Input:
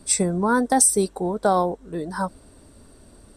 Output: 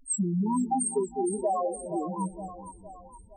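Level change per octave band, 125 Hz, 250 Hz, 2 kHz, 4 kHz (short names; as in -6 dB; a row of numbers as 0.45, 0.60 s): -4.0 dB, -4.5 dB, under -40 dB, under -40 dB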